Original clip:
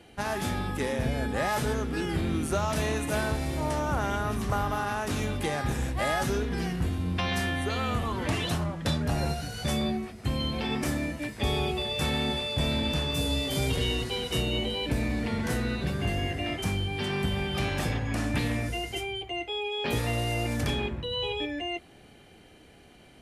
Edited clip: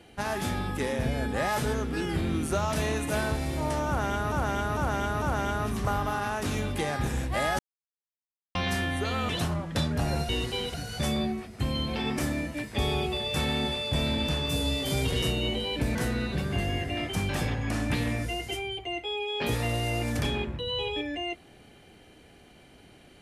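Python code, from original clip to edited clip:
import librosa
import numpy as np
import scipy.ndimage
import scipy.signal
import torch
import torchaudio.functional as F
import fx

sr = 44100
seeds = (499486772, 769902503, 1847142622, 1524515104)

y = fx.edit(x, sr, fx.repeat(start_s=3.87, length_s=0.45, count=4),
    fx.silence(start_s=6.24, length_s=0.96),
    fx.cut(start_s=7.94, length_s=0.45),
    fx.move(start_s=13.87, length_s=0.45, to_s=9.39),
    fx.cut(start_s=15.05, length_s=0.39),
    fx.cut(start_s=16.78, length_s=0.95), tone=tone)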